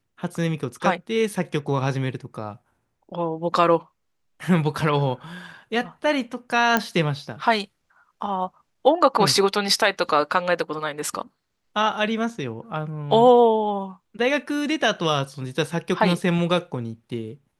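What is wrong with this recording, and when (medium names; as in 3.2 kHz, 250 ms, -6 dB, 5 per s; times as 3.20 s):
6.77 s: pop -6 dBFS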